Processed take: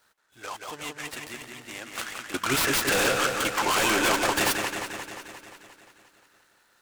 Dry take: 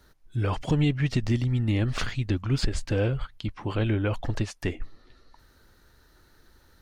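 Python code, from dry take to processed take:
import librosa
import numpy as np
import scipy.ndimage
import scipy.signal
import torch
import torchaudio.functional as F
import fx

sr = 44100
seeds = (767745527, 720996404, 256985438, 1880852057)

y = scipy.signal.sosfilt(scipy.signal.butter(2, 840.0, 'highpass', fs=sr, output='sos'), x)
y = fx.fold_sine(y, sr, drive_db=17, ceiling_db=-19.0, at=(2.34, 4.56))
y = fx.echo_wet_lowpass(y, sr, ms=176, feedback_pct=66, hz=3200.0, wet_db=-4)
y = fx.noise_mod_delay(y, sr, seeds[0], noise_hz=4400.0, depth_ms=0.04)
y = F.gain(torch.from_numpy(y), -1.0).numpy()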